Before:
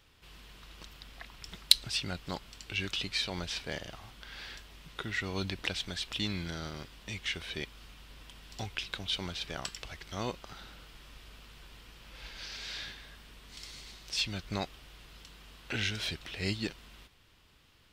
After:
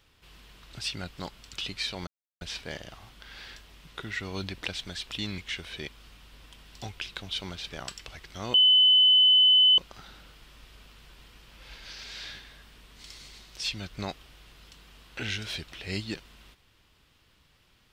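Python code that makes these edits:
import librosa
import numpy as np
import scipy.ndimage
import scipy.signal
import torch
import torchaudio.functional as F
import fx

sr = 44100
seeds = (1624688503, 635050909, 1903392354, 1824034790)

y = fx.edit(x, sr, fx.cut(start_s=0.73, length_s=1.09),
    fx.cut(start_s=2.62, length_s=0.26),
    fx.insert_silence(at_s=3.42, length_s=0.34),
    fx.cut(start_s=6.39, length_s=0.76),
    fx.insert_tone(at_s=10.31, length_s=1.24, hz=3020.0, db=-15.5), tone=tone)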